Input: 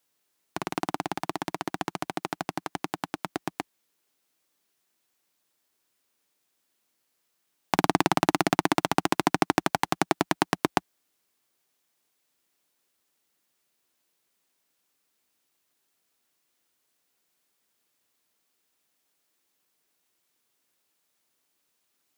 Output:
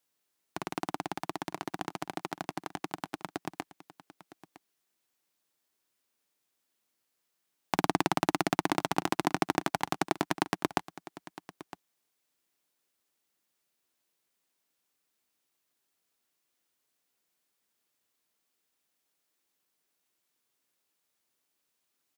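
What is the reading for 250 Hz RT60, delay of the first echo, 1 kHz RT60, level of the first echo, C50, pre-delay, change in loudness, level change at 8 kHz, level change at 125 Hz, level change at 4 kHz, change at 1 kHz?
no reverb, 960 ms, no reverb, -17.0 dB, no reverb, no reverb, -5.0 dB, -5.0 dB, -5.0 dB, -5.0 dB, -5.0 dB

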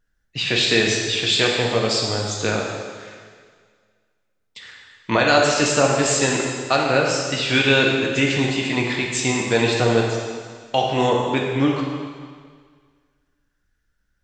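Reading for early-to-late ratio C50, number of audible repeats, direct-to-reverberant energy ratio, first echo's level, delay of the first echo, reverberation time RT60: 1.5 dB, no echo, -1.5 dB, no echo, no echo, 1.8 s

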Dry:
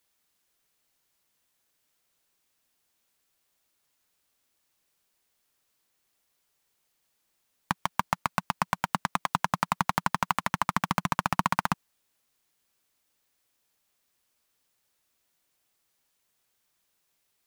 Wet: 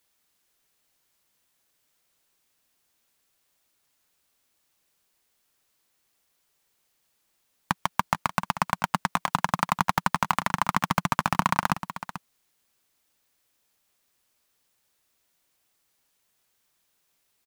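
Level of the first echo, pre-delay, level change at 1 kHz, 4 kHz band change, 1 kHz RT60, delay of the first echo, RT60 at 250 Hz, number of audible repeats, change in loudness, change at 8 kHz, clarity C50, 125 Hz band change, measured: -12.5 dB, no reverb, +2.5 dB, +2.5 dB, no reverb, 439 ms, no reverb, 1, +2.5 dB, +2.5 dB, no reverb, +3.0 dB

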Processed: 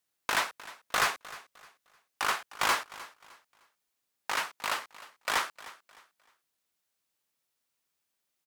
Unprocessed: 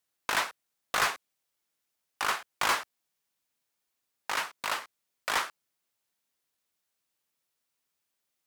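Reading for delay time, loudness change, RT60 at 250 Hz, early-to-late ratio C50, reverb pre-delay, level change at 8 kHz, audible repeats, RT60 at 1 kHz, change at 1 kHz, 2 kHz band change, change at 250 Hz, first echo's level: 306 ms, 0.0 dB, no reverb, no reverb, no reverb, 0.0 dB, 2, no reverb, 0.0 dB, 0.0 dB, 0.0 dB, -18.0 dB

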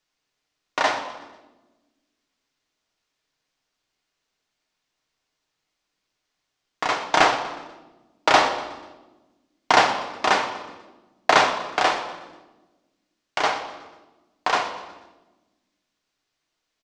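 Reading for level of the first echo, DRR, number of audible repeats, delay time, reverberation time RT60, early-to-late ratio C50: -16.5 dB, 3.5 dB, 4, 122 ms, 1.2 s, 8.5 dB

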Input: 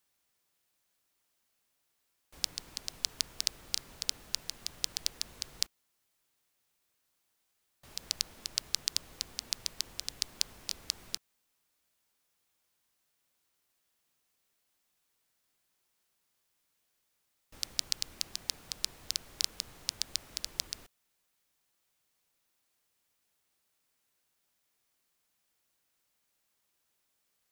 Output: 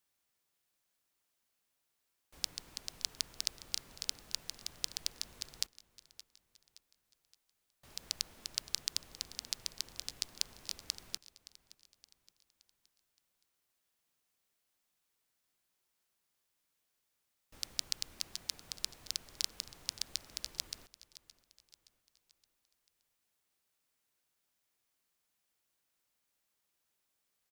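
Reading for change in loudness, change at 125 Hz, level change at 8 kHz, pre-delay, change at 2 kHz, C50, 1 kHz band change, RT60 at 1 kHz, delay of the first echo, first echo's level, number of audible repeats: -4.0 dB, -4.0 dB, -4.0 dB, no reverb, -4.0 dB, no reverb, -4.0 dB, no reverb, 570 ms, -18.0 dB, 3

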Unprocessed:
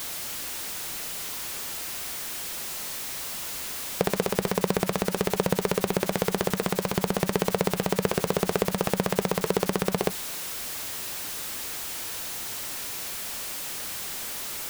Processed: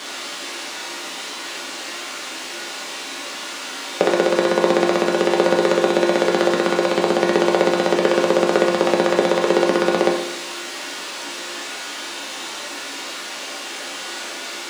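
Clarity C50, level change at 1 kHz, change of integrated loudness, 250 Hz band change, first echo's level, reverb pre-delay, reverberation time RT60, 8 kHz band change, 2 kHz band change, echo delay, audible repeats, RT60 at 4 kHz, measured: 4.5 dB, +10.0 dB, +8.0 dB, +9.5 dB, no echo, 4 ms, 0.80 s, +1.5 dB, +10.5 dB, no echo, no echo, 0.80 s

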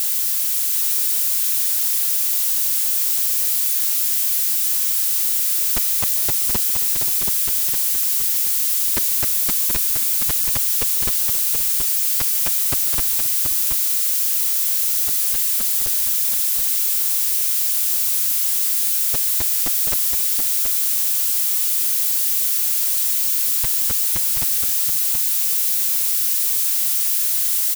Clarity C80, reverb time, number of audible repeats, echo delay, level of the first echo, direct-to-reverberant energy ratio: no reverb, no reverb, 3, 143 ms, -20.0 dB, no reverb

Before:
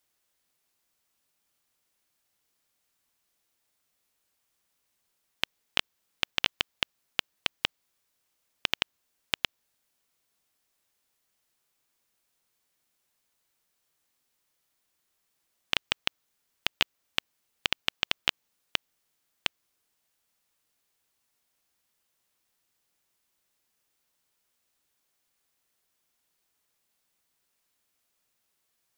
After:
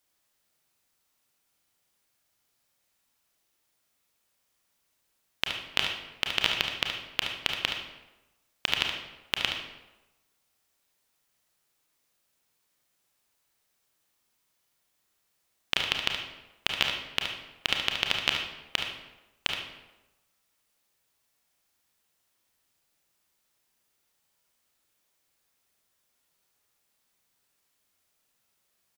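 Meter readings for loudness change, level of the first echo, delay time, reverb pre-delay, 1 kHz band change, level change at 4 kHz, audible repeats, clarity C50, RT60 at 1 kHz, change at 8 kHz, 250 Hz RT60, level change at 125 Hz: +2.0 dB, -8.0 dB, 72 ms, 27 ms, +3.0 dB, +2.5 dB, 1, 3.0 dB, 1.0 s, +2.0 dB, 1.0 s, +3.5 dB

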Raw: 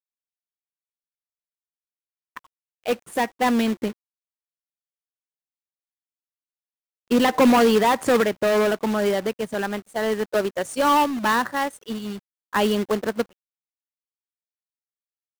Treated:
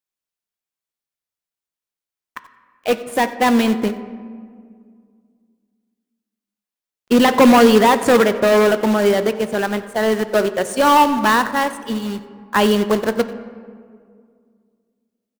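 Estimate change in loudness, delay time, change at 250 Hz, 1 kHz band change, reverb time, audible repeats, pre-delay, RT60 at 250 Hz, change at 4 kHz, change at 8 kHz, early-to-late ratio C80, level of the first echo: +6.0 dB, 92 ms, +6.0 dB, +6.0 dB, 2.1 s, 1, 5 ms, 2.7 s, +6.0 dB, +5.5 dB, 13.5 dB, -20.0 dB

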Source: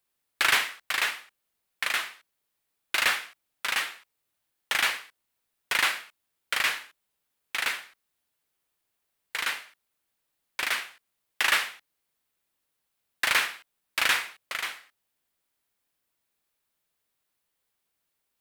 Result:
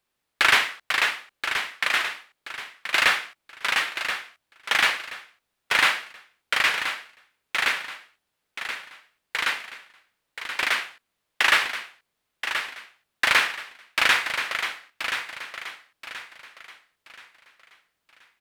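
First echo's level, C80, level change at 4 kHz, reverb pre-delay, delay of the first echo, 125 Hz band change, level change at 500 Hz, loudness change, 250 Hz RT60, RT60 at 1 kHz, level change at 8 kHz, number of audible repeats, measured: -8.5 dB, no reverb, +4.5 dB, no reverb, 1028 ms, no reading, +6.0 dB, +3.5 dB, no reverb, no reverb, 0.0 dB, 3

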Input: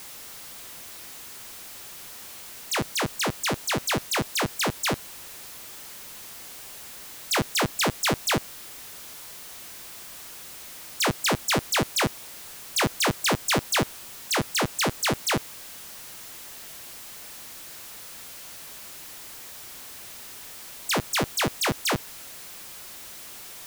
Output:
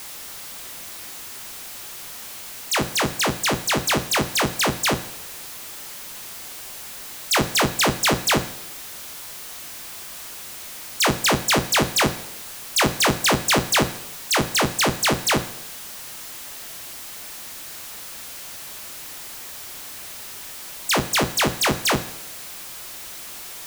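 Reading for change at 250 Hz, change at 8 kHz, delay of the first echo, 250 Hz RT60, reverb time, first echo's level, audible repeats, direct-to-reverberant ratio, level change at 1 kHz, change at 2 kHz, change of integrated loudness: +5.0 dB, +5.5 dB, no echo, 0.85 s, 0.80 s, no echo, no echo, 11.0 dB, +5.5 dB, +5.5 dB, +5.0 dB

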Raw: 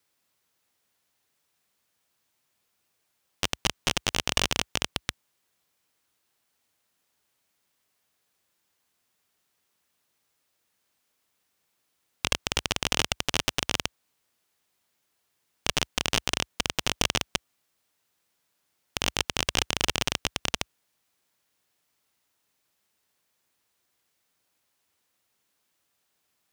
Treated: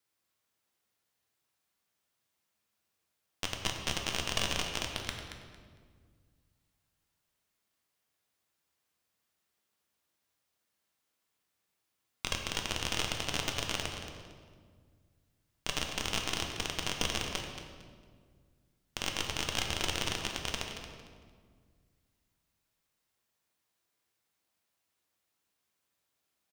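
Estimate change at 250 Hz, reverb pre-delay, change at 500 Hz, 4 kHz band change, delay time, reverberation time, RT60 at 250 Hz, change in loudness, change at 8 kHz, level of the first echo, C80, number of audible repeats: -5.5 dB, 3 ms, -5.5 dB, -6.5 dB, 227 ms, 1.8 s, 2.4 s, -6.5 dB, -7.0 dB, -11.0 dB, 4.5 dB, 2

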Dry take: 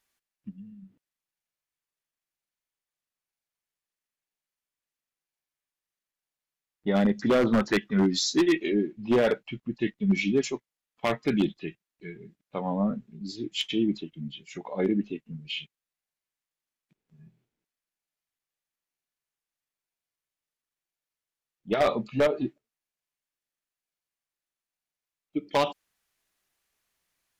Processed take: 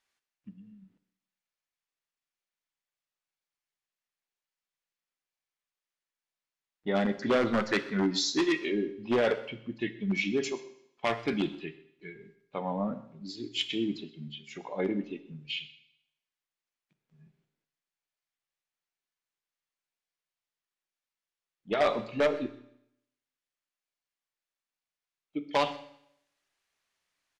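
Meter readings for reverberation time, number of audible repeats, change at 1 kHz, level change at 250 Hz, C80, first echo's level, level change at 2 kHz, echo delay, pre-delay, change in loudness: 0.70 s, 1, -1.5 dB, -5.5 dB, 15.0 dB, -20.0 dB, -0.5 dB, 127 ms, 7 ms, -3.5 dB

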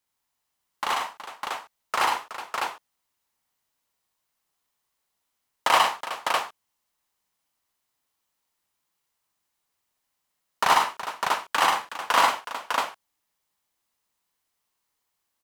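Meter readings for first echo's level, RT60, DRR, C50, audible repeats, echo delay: -2.5 dB, no reverb, no reverb, no reverb, 4, 61 ms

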